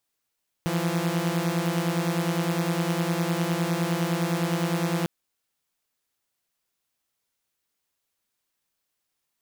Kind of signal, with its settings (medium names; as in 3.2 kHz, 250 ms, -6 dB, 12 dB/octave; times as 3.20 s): chord E3/F3 saw, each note -24 dBFS 4.40 s